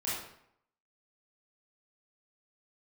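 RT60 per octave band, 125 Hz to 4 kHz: 0.70, 0.70, 0.70, 0.70, 0.65, 0.55 seconds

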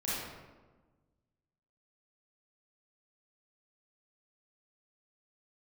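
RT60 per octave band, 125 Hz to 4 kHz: 1.9, 1.7, 1.4, 1.2, 0.95, 0.75 seconds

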